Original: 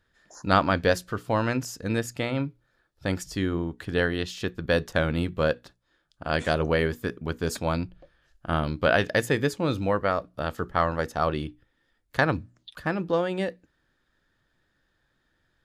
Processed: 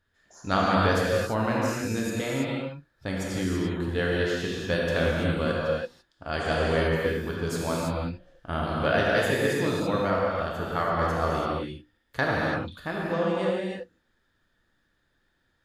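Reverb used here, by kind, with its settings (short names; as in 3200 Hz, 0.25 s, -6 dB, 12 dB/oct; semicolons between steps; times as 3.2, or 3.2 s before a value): non-linear reverb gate 0.36 s flat, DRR -4.5 dB; gain -5.5 dB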